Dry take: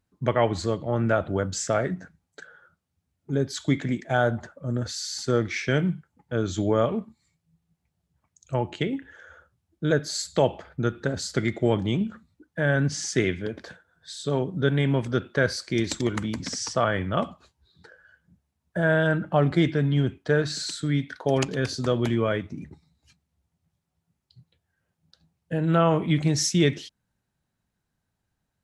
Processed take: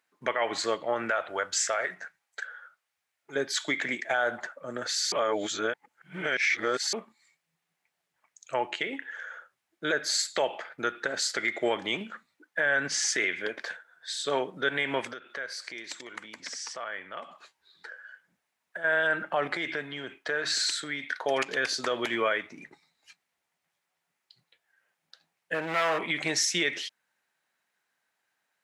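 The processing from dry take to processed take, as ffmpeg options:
ffmpeg -i in.wav -filter_complex "[0:a]asettb=1/sr,asplit=3[link_01][link_02][link_03];[link_01]atrim=end=1.104[link_04];[link_02]atrim=start=1.1:end=3.36,asetpts=PTS-STARTPTS,afade=type=in:duration=0.004:curve=qsin,afade=type=out:start_time=2.256:duration=0.004:curve=qsin,equalizer=frequency=230:width_type=o:width=1.6:gain=-11[link_05];[link_03]atrim=start=3.356[link_06];[link_04][link_05]acrossfade=duration=0.004:curve1=hsin:curve2=qsin[link_07];[link_07][link_06]acrossfade=duration=0.004:curve1=qsin:curve2=hsin,asplit=3[link_08][link_09][link_10];[link_08]afade=type=out:start_time=15.12:duration=0.02[link_11];[link_09]acompressor=threshold=-42dB:ratio=3:attack=3.2:release=140:knee=1:detection=peak,afade=type=in:start_time=15.12:duration=0.02,afade=type=out:start_time=18.84:duration=0.02[link_12];[link_10]afade=type=in:start_time=18.84:duration=0.02[link_13];[link_11][link_12][link_13]amix=inputs=3:normalize=0,asettb=1/sr,asplit=3[link_14][link_15][link_16];[link_14]atrim=end=19.474[link_17];[link_15]atrim=start=19.47:end=21.11,asetpts=PTS-STARTPTS,afade=type=in:duration=0.004:curve=qsin,afade=type=out:start_time=1.636:duration=0.004:curve=qsin,acompressor=threshold=-25dB:ratio=10:attack=3.2:release=140:knee=1:detection=peak[link_18];[link_16]atrim=start=21.106[link_19];[link_17][link_18]acrossfade=duration=0.004:curve1=hsin:curve2=qsin[link_20];[link_20][link_19]acrossfade=duration=0.004:curve1=qsin:curve2=hsin,asettb=1/sr,asplit=3[link_21][link_22][link_23];[link_21]atrim=end=25.544[link_24];[link_22]atrim=start=25.54:end=26.06,asetpts=PTS-STARTPTS,afade=type=in:duration=0.004:curve=qsin,afade=type=out:start_time=0.516:duration=0.004:curve=qsin,asoftclip=type=hard:threshold=-22dB[link_25];[link_23]atrim=start=26.056[link_26];[link_24][link_25]acrossfade=duration=0.004:curve1=hsin:curve2=qsin[link_27];[link_27][link_26]acrossfade=duration=0.004:curve1=qsin:curve2=hsin,asplit=3[link_28][link_29][link_30];[link_28]atrim=end=5.122[link_31];[link_29]atrim=start=5.118:end=6.932,asetpts=PTS-STARTPTS,areverse[link_32];[link_30]atrim=start=6.928[link_33];[link_31][link_32]acrossfade=duration=0.004:curve1=hsin:curve2=hsin[link_34];[link_34][link_33]acrossfade=duration=0.004:curve1=hsin:curve2=hsin,highpass=560,equalizer=frequency=2000:width=1.3:gain=8,alimiter=limit=-19.5dB:level=0:latency=1:release=89,volume=3dB" out.wav

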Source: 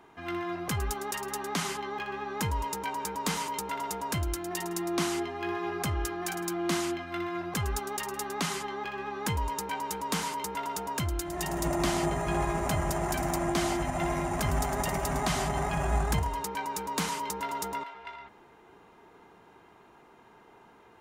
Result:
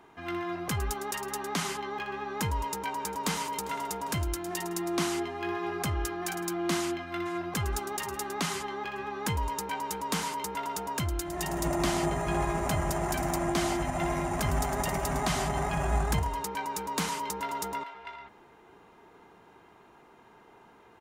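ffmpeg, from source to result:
ffmpeg -i in.wav -filter_complex "[0:a]asplit=2[link_01][link_02];[link_02]afade=type=in:start_time=2.65:duration=0.01,afade=type=out:start_time=3.44:duration=0.01,aecho=0:1:400|800|1200|1600|2000|2400:0.133352|0.0800113|0.0480068|0.0288041|0.0172824|0.0103695[link_03];[link_01][link_03]amix=inputs=2:normalize=0,asplit=2[link_04][link_05];[link_05]afade=type=in:start_time=6.78:duration=0.01,afade=type=out:start_time=7.68:duration=0.01,aecho=0:1:470|940|1410|1880:0.133352|0.0666761|0.033338|0.016669[link_06];[link_04][link_06]amix=inputs=2:normalize=0" out.wav

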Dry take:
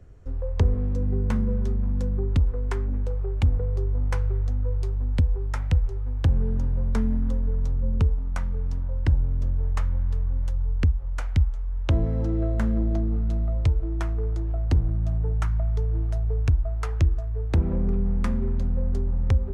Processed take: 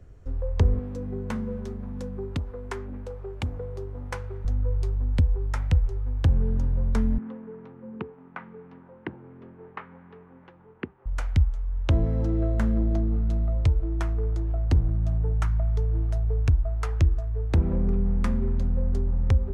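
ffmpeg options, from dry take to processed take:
ffmpeg -i in.wav -filter_complex "[0:a]asettb=1/sr,asplit=3[link_01][link_02][link_03];[link_01]atrim=end=0.794[link_04];[link_02]atrim=start=0.79:end=4.45,asetpts=PTS-STARTPTS,afade=type=in:duration=0.004:curve=qsin,afade=type=out:start_time=3.656:duration=0.004:curve=qsin,highpass=frequency=230:poles=1[link_05];[link_03]atrim=start=4.446[link_06];[link_04][link_05]acrossfade=duration=0.004:curve1=hsin:curve2=qsin[link_07];[link_07][link_06]acrossfade=duration=0.004:curve1=qsin:curve2=hsin,asettb=1/sr,asplit=3[link_08][link_09][link_10];[link_08]atrim=end=7.184[link_11];[link_09]atrim=start=7.18:end=11.06,asetpts=PTS-STARTPTS,afade=type=in:duration=0.004:curve=qsin,afade=type=out:start_time=3.876:duration=0.004:curve=qsin,highpass=frequency=200:width=0.5412,highpass=frequency=200:width=1.3066,equalizer=frequency=250:width_type=q:width=4:gain=-4,equalizer=frequency=370:width_type=q:width=4:gain=5,equalizer=frequency=580:width_type=q:width=4:gain=-9,lowpass=frequency=2600:width=0.5412,lowpass=frequency=2600:width=1.3066[link_12];[link_10]atrim=start=11.056[link_13];[link_11][link_12]acrossfade=duration=0.004:curve1=hsin:curve2=qsin[link_14];[link_14][link_13]acrossfade=duration=0.004:curve1=qsin:curve2=hsin" out.wav

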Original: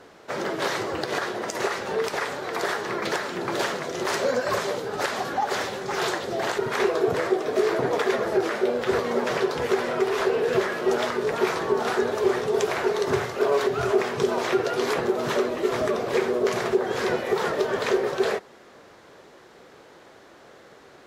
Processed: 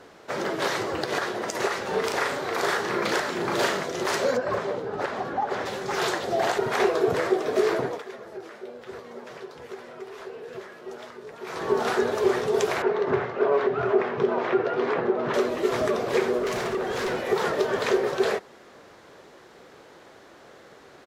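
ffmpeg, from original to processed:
ffmpeg -i in.wav -filter_complex "[0:a]asplit=3[link_01][link_02][link_03];[link_01]afade=type=out:start_time=1.92:duration=0.02[link_04];[link_02]asplit=2[link_05][link_06];[link_06]adelay=37,volume=-2.5dB[link_07];[link_05][link_07]amix=inputs=2:normalize=0,afade=type=in:start_time=1.92:duration=0.02,afade=type=out:start_time=3.84:duration=0.02[link_08];[link_03]afade=type=in:start_time=3.84:duration=0.02[link_09];[link_04][link_08][link_09]amix=inputs=3:normalize=0,asplit=3[link_10][link_11][link_12];[link_10]afade=type=out:start_time=4.36:duration=0.02[link_13];[link_11]lowpass=frequency=1200:poles=1,afade=type=in:start_time=4.36:duration=0.02,afade=type=out:start_time=5.65:duration=0.02[link_14];[link_12]afade=type=in:start_time=5.65:duration=0.02[link_15];[link_13][link_14][link_15]amix=inputs=3:normalize=0,asettb=1/sr,asplit=3[link_16][link_17][link_18];[link_16]atrim=end=6.234[link_19];[link_17]atrim=start=6.23:end=6.89,asetpts=PTS-STARTPTS,afade=type=in:duration=0.004:curve=qsin,afade=type=out:start_time=0.656:duration=0.004:curve=qsin,equalizer=frequency=720:width=4.2:gain=7[link_20];[link_18]atrim=start=6.886[link_21];[link_19][link_20]acrossfade=duration=0.004:curve1=hsin:curve2=qsin[link_22];[link_22][link_21]acrossfade=duration=0.004:curve1=qsin:curve2=hsin,asettb=1/sr,asplit=3[link_23][link_24][link_25];[link_23]atrim=end=12.824[link_26];[link_24]atrim=start=12.82:end=15.34,asetpts=PTS-STARTPTS,afade=type=in:duration=0.004:curve=qsin,afade=type=out:start_time=2.516:duration=0.004:curve=qsin,highpass=120,lowpass=2100[link_27];[link_25]atrim=start=15.336[link_28];[link_26][link_27]acrossfade=duration=0.004:curve1=hsin:curve2=qsin[link_29];[link_29][link_28]acrossfade=duration=0.004:curve1=qsin:curve2=hsin,asettb=1/sr,asplit=3[link_30][link_31][link_32];[link_30]atrim=end=16.384[link_33];[link_31]atrim=start=16.38:end=17.29,asetpts=PTS-STARTPTS,afade=type=in:duration=0.004:curve=qsin,afade=type=out:start_time=0.906:duration=0.004:curve=qsin,volume=24dB,asoftclip=hard,volume=-24dB[link_34];[link_32]atrim=start=17.286[link_35];[link_33][link_34]acrossfade=duration=0.004:curve1=hsin:curve2=qsin[link_36];[link_36][link_35]acrossfade=duration=0.004:curve1=qsin:curve2=hsin,asplit=3[link_37][link_38][link_39];[link_37]atrim=end=8.02,asetpts=PTS-STARTPTS,afade=type=out:start_time=7.73:duration=0.29:silence=0.158489[link_40];[link_38]atrim=start=8.02:end=11.44,asetpts=PTS-STARTPTS,volume=-16dB[link_41];[link_39]atrim=start=11.44,asetpts=PTS-STARTPTS,afade=type=in:duration=0.29:silence=0.158489[link_42];[link_40][link_41][link_42]concat=n=3:v=0:a=1" out.wav

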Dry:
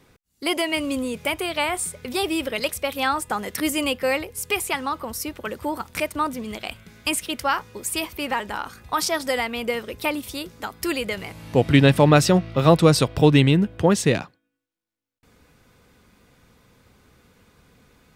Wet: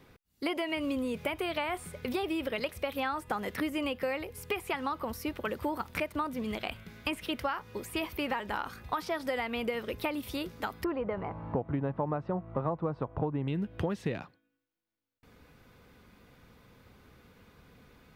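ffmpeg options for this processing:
ffmpeg -i in.wav -filter_complex "[0:a]asettb=1/sr,asplit=3[link_01][link_02][link_03];[link_01]atrim=end=10.844[link_04];[link_02]atrim=start=10.84:end=13.48,asetpts=PTS-STARTPTS,afade=type=in:duration=0.004:curve=qsin,afade=type=out:start_time=2.636:duration=0.004:curve=qsin,lowpass=frequency=1000:width_type=q:width=2.2[link_05];[link_03]atrim=start=13.476[link_06];[link_04][link_05]acrossfade=duration=0.004:curve1=hsin:curve2=qsin[link_07];[link_07][link_06]acrossfade=duration=0.004:curve1=qsin:curve2=hsin,acrossover=split=3000[link_08][link_09];[link_09]acompressor=threshold=-36dB:ratio=4:attack=1:release=60[link_10];[link_08][link_10]amix=inputs=2:normalize=0,equalizer=frequency=7900:width=0.98:gain=-8.5,acompressor=threshold=-27dB:ratio=12,volume=-1.5dB" out.wav

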